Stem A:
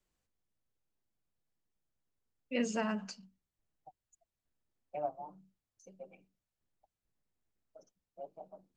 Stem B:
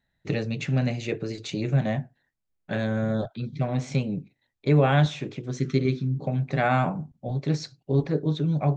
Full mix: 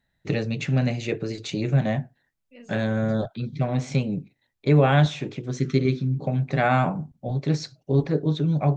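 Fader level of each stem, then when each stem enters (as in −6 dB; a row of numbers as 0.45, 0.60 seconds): −14.5, +2.0 decibels; 0.00, 0.00 seconds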